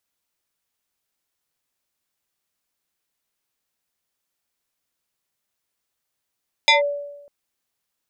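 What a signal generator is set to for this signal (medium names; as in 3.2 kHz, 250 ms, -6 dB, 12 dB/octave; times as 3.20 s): FM tone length 0.60 s, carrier 575 Hz, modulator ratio 2.57, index 3.1, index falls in 0.14 s linear, decay 0.98 s, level -9 dB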